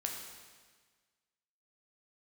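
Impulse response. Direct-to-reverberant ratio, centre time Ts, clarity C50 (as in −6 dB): 0.5 dB, 55 ms, 3.5 dB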